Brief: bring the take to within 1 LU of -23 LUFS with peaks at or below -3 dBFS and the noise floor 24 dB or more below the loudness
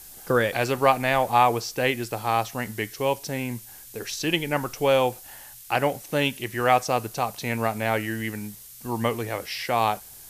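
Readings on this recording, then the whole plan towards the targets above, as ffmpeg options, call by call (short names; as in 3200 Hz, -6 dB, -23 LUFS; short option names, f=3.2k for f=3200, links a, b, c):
noise floor -45 dBFS; noise floor target -49 dBFS; loudness -25.0 LUFS; peak -5.5 dBFS; loudness target -23.0 LUFS
-> -af "afftdn=nr=6:nf=-45"
-af "volume=2dB"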